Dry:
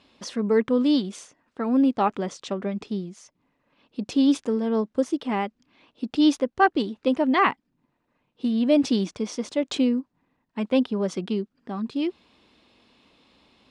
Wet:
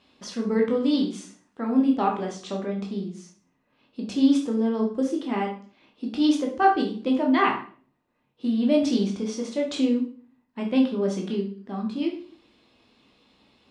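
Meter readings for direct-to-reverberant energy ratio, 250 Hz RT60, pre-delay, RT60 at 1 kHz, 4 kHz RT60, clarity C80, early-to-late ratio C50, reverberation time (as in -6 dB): 0.0 dB, 0.60 s, 11 ms, 0.40 s, 0.40 s, 12.5 dB, 7.5 dB, 0.45 s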